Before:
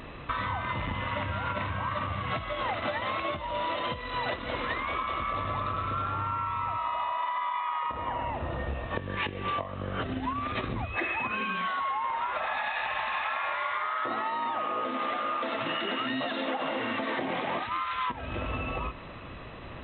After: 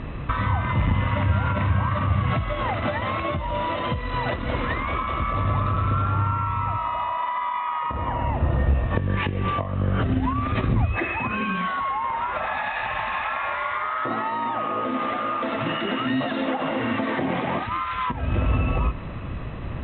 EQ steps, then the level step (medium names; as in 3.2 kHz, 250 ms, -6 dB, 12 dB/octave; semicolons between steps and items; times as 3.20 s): distance through air 100 m; tone controls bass +10 dB, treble -7 dB; +5.0 dB